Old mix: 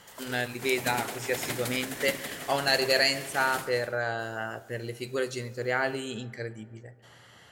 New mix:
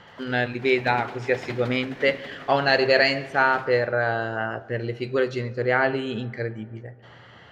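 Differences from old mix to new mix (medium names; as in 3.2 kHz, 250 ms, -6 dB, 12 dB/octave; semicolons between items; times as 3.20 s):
speech +8.0 dB; master: add distance through air 250 m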